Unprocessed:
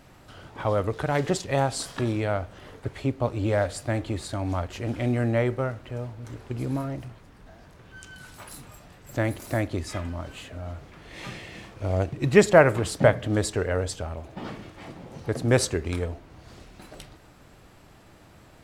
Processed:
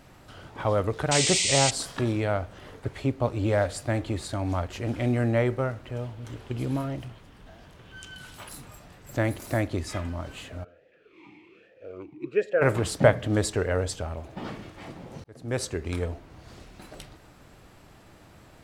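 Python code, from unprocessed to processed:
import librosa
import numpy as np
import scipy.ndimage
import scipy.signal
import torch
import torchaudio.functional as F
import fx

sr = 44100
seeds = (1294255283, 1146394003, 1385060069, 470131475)

y = fx.spec_paint(x, sr, seeds[0], shape='noise', start_s=1.11, length_s=0.6, low_hz=1900.0, high_hz=8900.0, level_db=-25.0)
y = fx.peak_eq(y, sr, hz=3100.0, db=7.0, octaves=0.43, at=(5.95, 8.49))
y = fx.vowel_sweep(y, sr, vowels='e-u', hz=fx.line((10.63, 0.92), (12.61, 1.6)), at=(10.63, 12.61), fade=0.02)
y = fx.edit(y, sr, fx.fade_in_span(start_s=15.24, length_s=0.83), tone=tone)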